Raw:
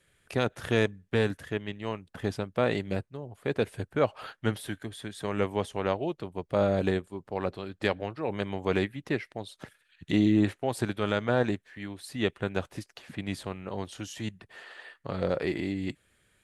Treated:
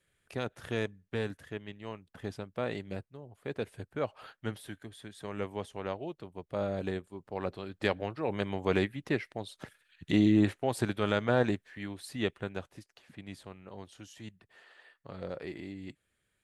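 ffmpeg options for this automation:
ffmpeg -i in.wav -af "volume=-1dB,afade=type=in:start_time=6.86:duration=1.24:silence=0.446684,afade=type=out:start_time=11.96:duration=0.76:silence=0.316228" out.wav

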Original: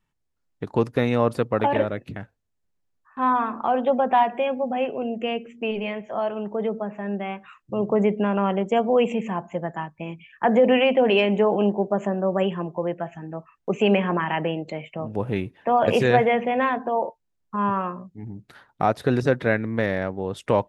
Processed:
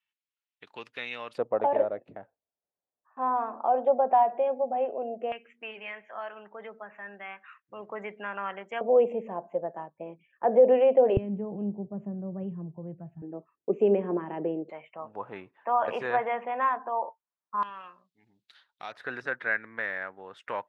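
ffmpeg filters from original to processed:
ffmpeg -i in.wav -af "asetnsamples=nb_out_samples=441:pad=0,asendcmd='1.38 bandpass f 650;5.32 bandpass f 1700;8.81 bandpass f 550;11.17 bandpass f 120;13.22 bandpass f 380;14.7 bandpass f 1100;17.63 bandpass f 3700;18.92 bandpass f 1600',bandpass=frequency=2800:width_type=q:width=2.2:csg=0" out.wav

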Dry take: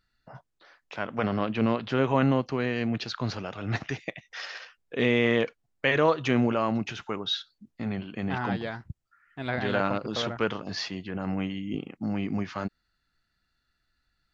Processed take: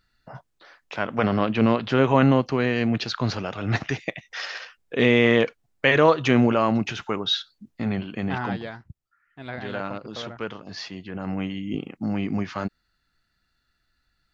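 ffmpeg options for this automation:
ffmpeg -i in.wav -af "volume=13.5dB,afade=type=out:start_time=7.99:duration=0.87:silence=0.316228,afade=type=in:start_time=10.63:duration=1.12:silence=0.398107" out.wav

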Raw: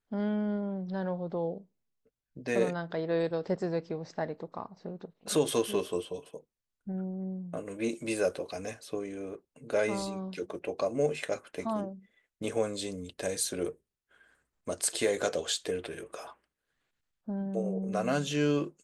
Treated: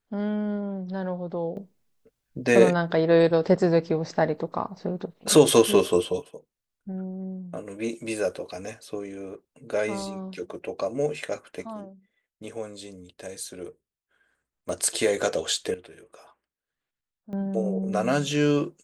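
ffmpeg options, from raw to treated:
ffmpeg -i in.wav -af "asetnsamples=nb_out_samples=441:pad=0,asendcmd='1.57 volume volume 11dB;6.22 volume volume 2dB;11.62 volume volume -5dB;14.69 volume volume 5dB;15.74 volume volume -7.5dB;17.33 volume volume 5.5dB',volume=3dB" out.wav

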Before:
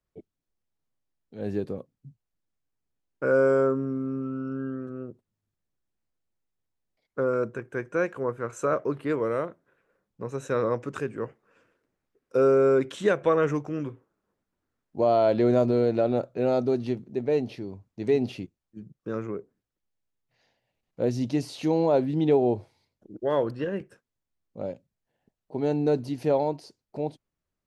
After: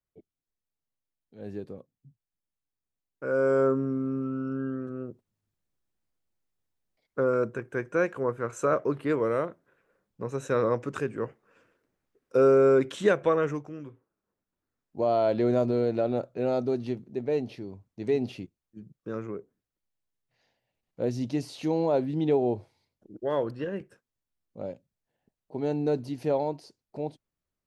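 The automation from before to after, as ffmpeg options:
ffmpeg -i in.wav -af "volume=7.5dB,afade=type=in:start_time=3.23:duration=0.49:silence=0.375837,afade=type=out:start_time=13.09:duration=0.69:silence=0.298538,afade=type=in:start_time=13.78:duration=1.39:silence=0.446684" out.wav

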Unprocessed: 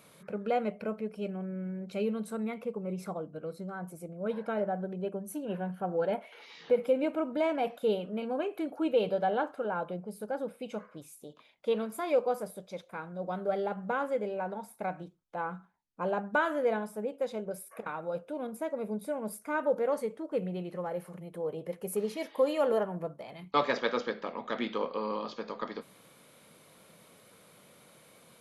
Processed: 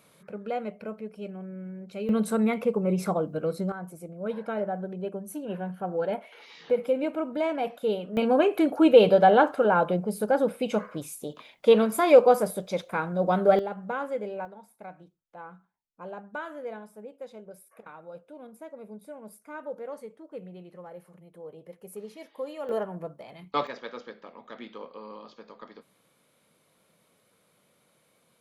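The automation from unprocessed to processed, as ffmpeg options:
ffmpeg -i in.wav -af "asetnsamples=nb_out_samples=441:pad=0,asendcmd='2.09 volume volume 10.5dB;3.72 volume volume 1.5dB;8.17 volume volume 11.5dB;13.59 volume volume 0dB;14.45 volume volume -8.5dB;22.69 volume volume -0.5dB;23.67 volume volume -9dB',volume=-2dB" out.wav

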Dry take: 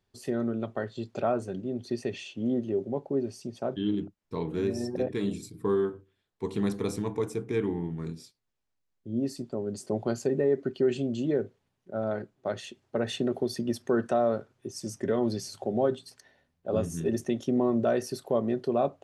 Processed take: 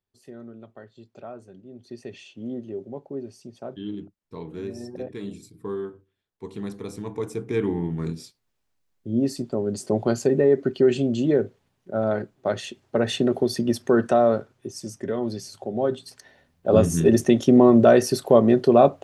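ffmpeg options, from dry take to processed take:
ffmpeg -i in.wav -af "volume=18.5dB,afade=type=in:start_time=1.66:duration=0.54:silence=0.421697,afade=type=in:start_time=6.91:duration=1.11:silence=0.266073,afade=type=out:start_time=14.3:duration=0.64:silence=0.446684,afade=type=in:start_time=15.74:duration=1.06:silence=0.266073" out.wav

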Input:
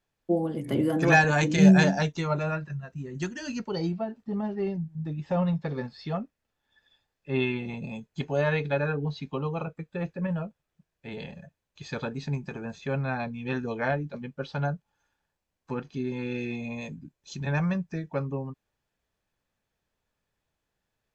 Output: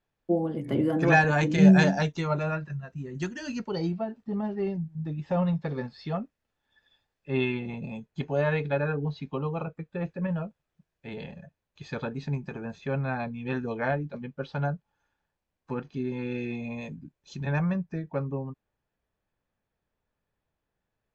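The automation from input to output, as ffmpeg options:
ffmpeg -i in.wav -af "asetnsamples=nb_out_samples=441:pad=0,asendcmd='1.73 lowpass f 5800;7.59 lowpass f 2700;10.07 lowpass f 5100;11.14 lowpass f 3000;17.59 lowpass f 1700',lowpass=frequency=2800:poles=1" out.wav

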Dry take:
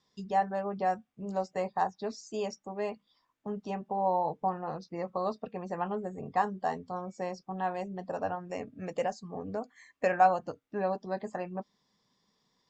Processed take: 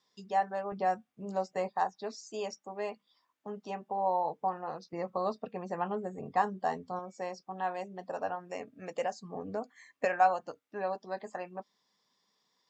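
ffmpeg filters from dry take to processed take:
ffmpeg -i in.wav -af "asetnsamples=nb_out_samples=441:pad=0,asendcmd='0.72 highpass f 190;1.69 highpass f 430;4.93 highpass f 140;6.99 highpass f 440;9.16 highpass f 170;10.05 highpass f 590',highpass=frequency=470:poles=1" out.wav

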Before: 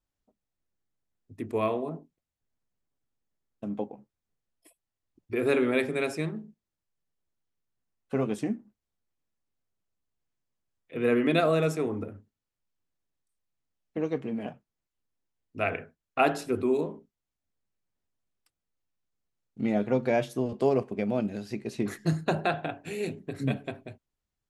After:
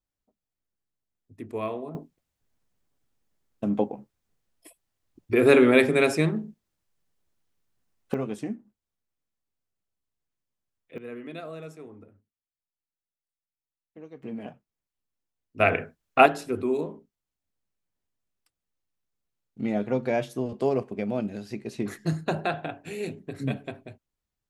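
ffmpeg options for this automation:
ffmpeg -i in.wav -af "asetnsamples=nb_out_samples=441:pad=0,asendcmd='1.95 volume volume 8dB;8.14 volume volume -2.5dB;10.98 volume volume -15dB;14.23 volume volume -3dB;15.6 volume volume 7.5dB;16.26 volume volume -0.5dB',volume=-3.5dB" out.wav

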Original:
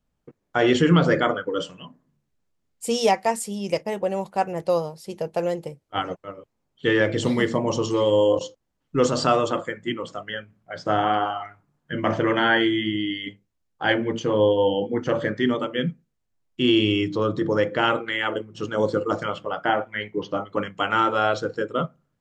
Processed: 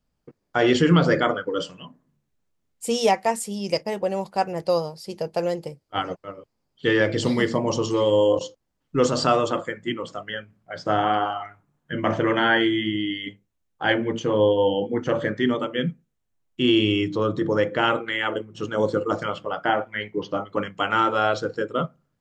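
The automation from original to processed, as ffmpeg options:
ffmpeg -i in.wav -af "asetnsamples=nb_out_samples=441:pad=0,asendcmd='1.83 equalizer g -1;3.51 equalizer g 10;7.74 equalizer g 2;11.33 equalizer g -4;19.15 equalizer g 2.5',equalizer=frequency=4800:width_type=o:width=0.24:gain=7.5" out.wav

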